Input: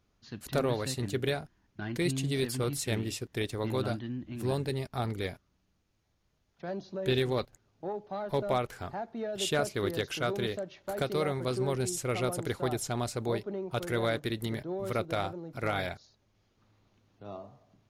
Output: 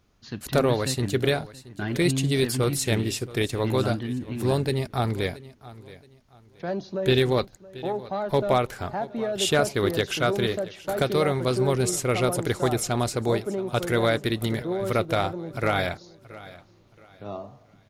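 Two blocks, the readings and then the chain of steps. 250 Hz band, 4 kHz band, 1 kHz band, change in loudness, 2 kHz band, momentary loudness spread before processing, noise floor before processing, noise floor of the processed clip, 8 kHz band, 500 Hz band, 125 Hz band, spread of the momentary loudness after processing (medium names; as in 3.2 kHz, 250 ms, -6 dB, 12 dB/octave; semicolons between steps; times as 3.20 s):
+7.5 dB, +7.5 dB, +7.5 dB, +7.5 dB, +7.5 dB, 9 LU, -74 dBFS, -56 dBFS, +7.5 dB, +7.5 dB, +7.5 dB, 14 LU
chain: feedback delay 675 ms, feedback 30%, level -18.5 dB; trim +7.5 dB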